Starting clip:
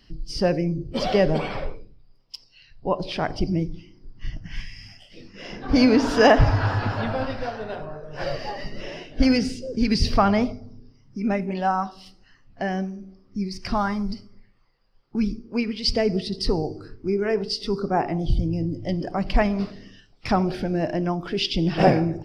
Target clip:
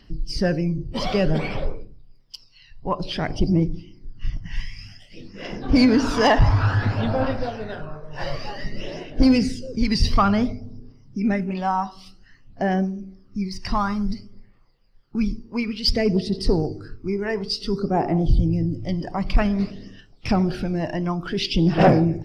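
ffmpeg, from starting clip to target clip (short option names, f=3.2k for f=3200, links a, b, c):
-af "aphaser=in_gain=1:out_gain=1:delay=1.1:decay=0.49:speed=0.55:type=triangular,asoftclip=type=tanh:threshold=-7dB"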